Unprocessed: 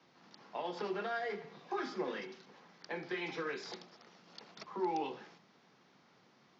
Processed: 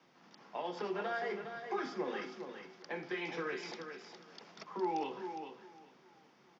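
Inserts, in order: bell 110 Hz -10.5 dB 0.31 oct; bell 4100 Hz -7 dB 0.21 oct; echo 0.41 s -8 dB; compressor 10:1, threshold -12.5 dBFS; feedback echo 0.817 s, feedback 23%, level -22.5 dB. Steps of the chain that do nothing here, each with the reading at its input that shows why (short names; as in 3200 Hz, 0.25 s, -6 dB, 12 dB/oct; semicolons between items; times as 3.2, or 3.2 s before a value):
compressor, threshold -12.5 dBFS: input peak -24.0 dBFS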